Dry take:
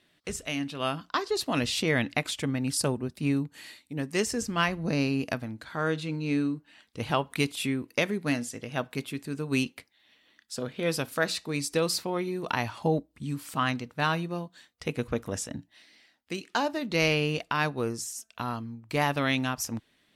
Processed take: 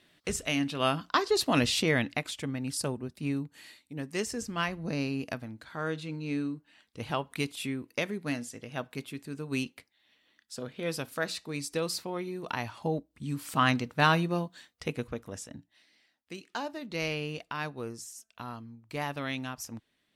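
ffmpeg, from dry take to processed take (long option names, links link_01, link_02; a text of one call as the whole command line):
ffmpeg -i in.wav -af "volume=11dB,afade=type=out:start_time=1.58:duration=0.66:silence=0.421697,afade=type=in:start_time=13.1:duration=0.63:silence=0.375837,afade=type=out:start_time=14.42:duration=0.75:silence=0.266073" out.wav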